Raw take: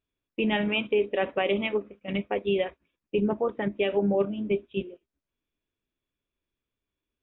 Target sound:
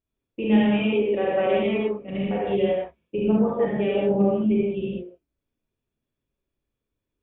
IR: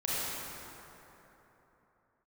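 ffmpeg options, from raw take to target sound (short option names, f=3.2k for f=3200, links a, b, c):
-filter_complex "[0:a]tiltshelf=f=840:g=4.5[a];[1:a]atrim=start_sample=2205,afade=t=out:st=0.26:d=0.01,atrim=end_sample=11907[b];[a][b]afir=irnorm=-1:irlink=0,volume=-4dB"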